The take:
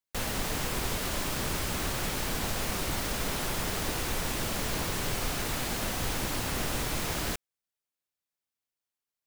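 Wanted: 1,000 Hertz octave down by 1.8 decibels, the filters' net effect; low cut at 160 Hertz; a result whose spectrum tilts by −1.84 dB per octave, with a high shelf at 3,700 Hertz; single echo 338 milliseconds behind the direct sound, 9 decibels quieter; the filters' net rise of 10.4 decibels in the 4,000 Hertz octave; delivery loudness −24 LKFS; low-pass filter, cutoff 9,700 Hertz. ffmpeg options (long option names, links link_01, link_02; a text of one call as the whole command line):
ffmpeg -i in.wav -af "highpass=160,lowpass=9700,equalizer=frequency=1000:width_type=o:gain=-3.5,highshelf=frequency=3700:gain=8,equalizer=frequency=4000:width_type=o:gain=8,aecho=1:1:338:0.355,volume=1.5dB" out.wav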